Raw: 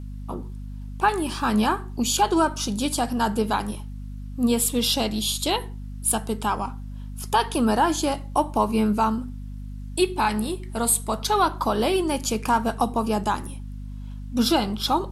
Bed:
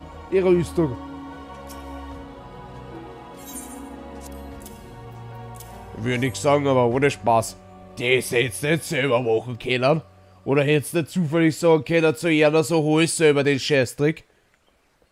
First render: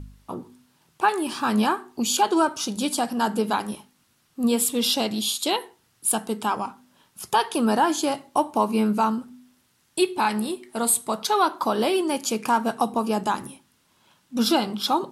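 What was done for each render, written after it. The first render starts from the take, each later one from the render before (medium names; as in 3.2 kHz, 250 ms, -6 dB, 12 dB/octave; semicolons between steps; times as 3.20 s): de-hum 50 Hz, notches 5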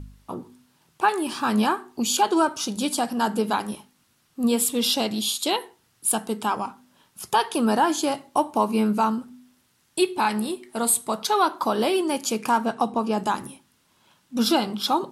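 12.65–13.18 s: distance through air 58 m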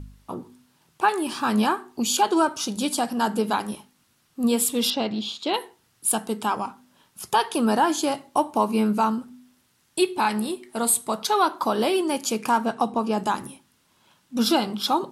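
4.90–5.54 s: distance through air 190 m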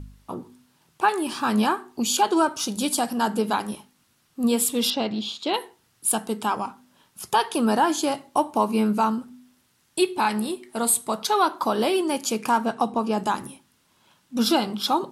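2.57–3.16 s: treble shelf 12 kHz -> 7.9 kHz +7 dB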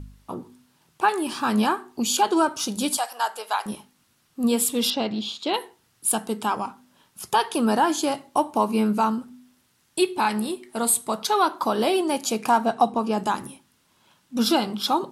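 2.97–3.66 s: high-pass 630 Hz 24 dB/octave; 11.87–12.89 s: small resonant body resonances 720/3900 Hz, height 7 dB, ringing for 20 ms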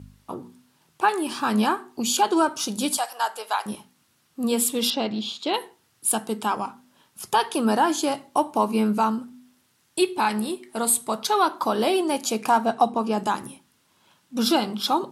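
high-pass 74 Hz; hum notches 60/120/180/240 Hz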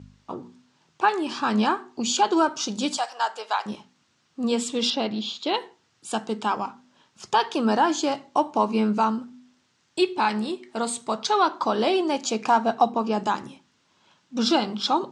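steep low-pass 7.2 kHz 36 dB/octave; bass shelf 77 Hz -6 dB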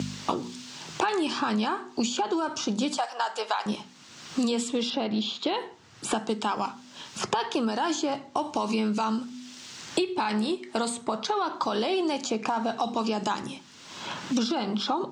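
peak limiter -18.5 dBFS, peak gain reduction 11.5 dB; three bands compressed up and down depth 100%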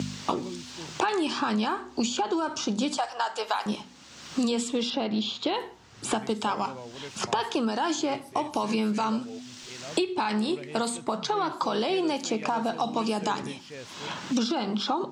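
add bed -23.5 dB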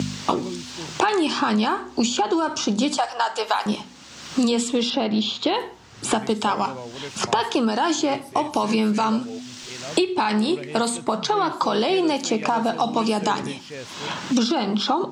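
trim +6 dB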